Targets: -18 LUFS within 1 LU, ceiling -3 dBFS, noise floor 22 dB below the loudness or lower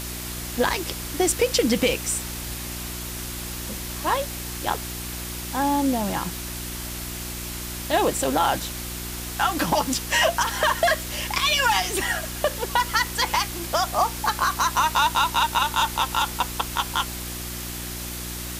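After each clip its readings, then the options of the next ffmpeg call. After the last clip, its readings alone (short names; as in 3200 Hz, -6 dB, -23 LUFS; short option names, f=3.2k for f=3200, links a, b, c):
hum 60 Hz; harmonics up to 360 Hz; hum level -34 dBFS; noise floor -33 dBFS; noise floor target -46 dBFS; loudness -24.0 LUFS; peak -9.0 dBFS; loudness target -18.0 LUFS
-> -af "bandreject=f=60:t=h:w=4,bandreject=f=120:t=h:w=4,bandreject=f=180:t=h:w=4,bandreject=f=240:t=h:w=4,bandreject=f=300:t=h:w=4,bandreject=f=360:t=h:w=4"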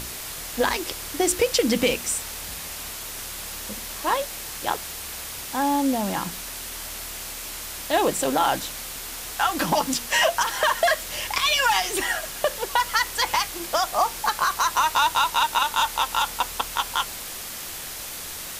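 hum none; noise floor -35 dBFS; noise floor target -47 dBFS
-> -af "afftdn=nr=12:nf=-35"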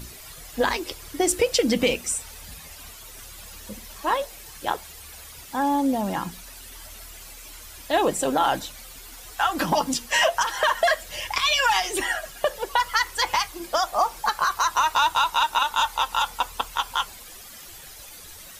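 noise floor -43 dBFS; noise floor target -46 dBFS
-> -af "afftdn=nr=6:nf=-43"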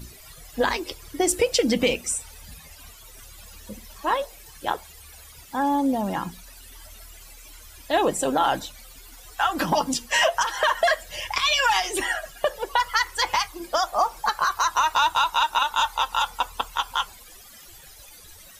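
noise floor -47 dBFS; loudness -23.5 LUFS; peak -10.0 dBFS; loudness target -18.0 LUFS
-> -af "volume=5.5dB"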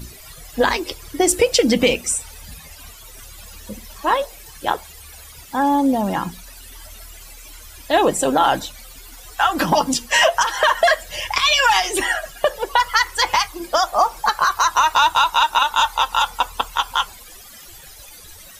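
loudness -18.0 LUFS; peak -4.5 dBFS; noise floor -41 dBFS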